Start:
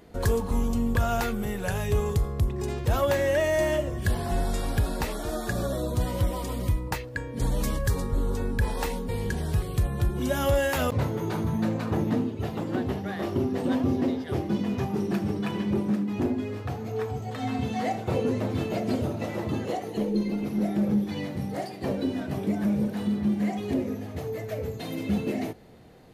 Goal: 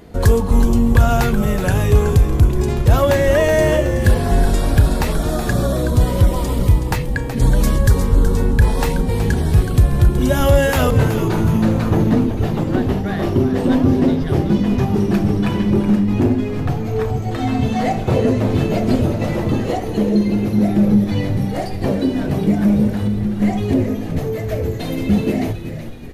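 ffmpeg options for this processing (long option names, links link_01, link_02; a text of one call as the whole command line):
ffmpeg -i in.wav -filter_complex "[0:a]lowshelf=frequency=240:gain=5,asettb=1/sr,asplit=3[link_01][link_02][link_03];[link_01]atrim=end=22.904[link_04];[link_02]atrim=start=22.9:end=23.42,asetpts=PTS-STARTPTS,afade=type=in:duration=0.004:curve=qsin,afade=type=out:start_time=0.516:duration=0.004:curve=qsin,acompressor=threshold=-28dB:ratio=3[link_05];[link_03]atrim=start=23.416[link_06];[link_04][link_05]acrossfade=duration=0.004:curve1=hsin:curve2=qsin[link_07];[link_07][link_06]acrossfade=duration=0.004:curve1=qsin:curve2=hsin,asplit=2[link_08][link_09];[link_09]asplit=6[link_10][link_11][link_12][link_13][link_14][link_15];[link_10]adelay=373,afreqshift=-100,volume=-9.5dB[link_16];[link_11]adelay=746,afreqshift=-200,volume=-15.2dB[link_17];[link_12]adelay=1119,afreqshift=-300,volume=-20.9dB[link_18];[link_13]adelay=1492,afreqshift=-400,volume=-26.5dB[link_19];[link_14]adelay=1865,afreqshift=-500,volume=-32.2dB[link_20];[link_15]adelay=2238,afreqshift=-600,volume=-37.9dB[link_21];[link_16][link_17][link_18][link_19][link_20][link_21]amix=inputs=6:normalize=0[link_22];[link_08][link_22]amix=inputs=2:normalize=0,aresample=32000,aresample=44100,volume=8dB" out.wav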